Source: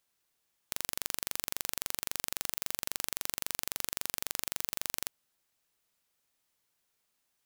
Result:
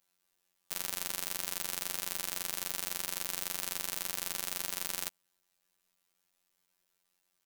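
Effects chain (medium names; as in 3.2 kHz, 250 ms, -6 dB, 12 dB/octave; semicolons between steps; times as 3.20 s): comb 5.9 ms, depth 78%; robot voice 90.6 Hz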